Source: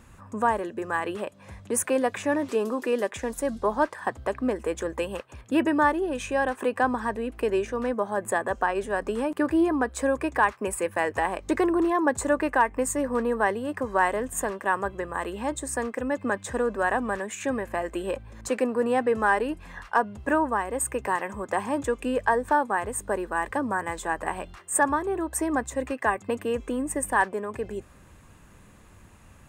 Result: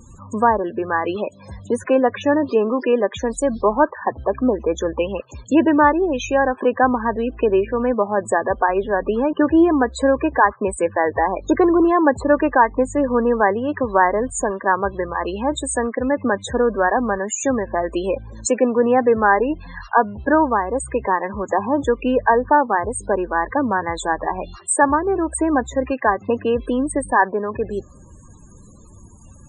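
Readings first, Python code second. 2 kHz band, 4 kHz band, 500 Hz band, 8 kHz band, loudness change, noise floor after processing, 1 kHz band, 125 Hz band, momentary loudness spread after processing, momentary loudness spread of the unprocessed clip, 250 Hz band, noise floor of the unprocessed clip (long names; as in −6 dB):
+5.0 dB, +5.5 dB, +8.5 dB, +4.0 dB, +7.5 dB, −44 dBFS, +7.5 dB, +8.0 dB, 7 LU, 7 LU, +8.5 dB, −52 dBFS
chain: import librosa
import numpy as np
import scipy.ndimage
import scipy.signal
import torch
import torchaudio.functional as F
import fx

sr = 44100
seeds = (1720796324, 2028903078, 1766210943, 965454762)

y = fx.env_lowpass_down(x, sr, base_hz=2300.0, full_db=-22.5)
y = fx.high_shelf_res(y, sr, hz=3100.0, db=8.5, q=1.5)
y = fx.spec_topn(y, sr, count=32)
y = y * librosa.db_to_amplitude(8.5)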